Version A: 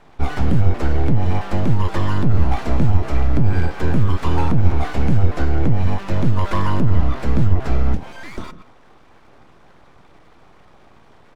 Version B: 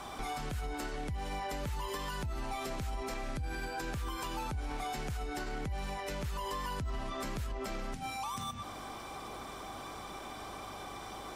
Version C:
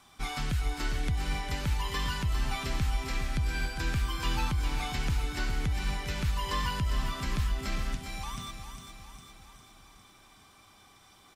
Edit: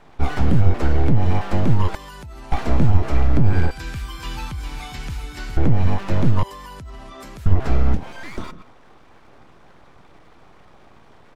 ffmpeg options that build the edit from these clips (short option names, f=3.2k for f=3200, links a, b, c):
-filter_complex "[1:a]asplit=2[a][b];[0:a]asplit=4[c][d][e][f];[c]atrim=end=1.952[g];[a]atrim=start=1.948:end=2.522[h];[d]atrim=start=2.518:end=3.712[i];[2:a]atrim=start=3.708:end=5.572[j];[e]atrim=start=5.568:end=6.432[k];[b]atrim=start=6.428:end=7.462[l];[f]atrim=start=7.458[m];[g][h]acrossfade=d=0.004:c1=hsin:c2=hsin[n];[n][i]acrossfade=d=0.004:c1=hsin:c2=hsin[o];[o][j]acrossfade=d=0.004:c1=hsin:c2=hsin[p];[p][k]acrossfade=d=0.004:c1=hsin:c2=hsin[q];[q][l]acrossfade=d=0.004:c1=hsin:c2=hsin[r];[r][m]acrossfade=d=0.004:c1=hsin:c2=hsin"